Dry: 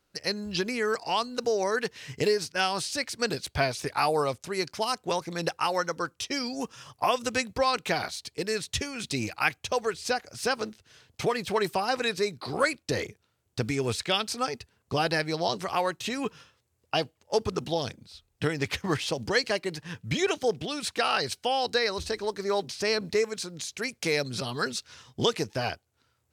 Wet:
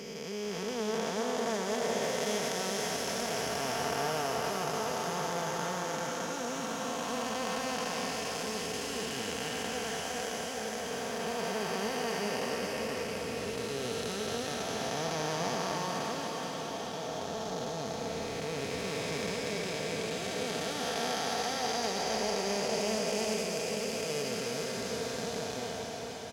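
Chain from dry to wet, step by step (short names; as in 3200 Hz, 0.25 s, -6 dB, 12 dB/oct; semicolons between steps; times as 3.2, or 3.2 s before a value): time blur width 1.05 s; comb 4.4 ms, depth 43%; formant shift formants +3 st; diffused feedback echo 0.459 s, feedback 68%, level -6 dB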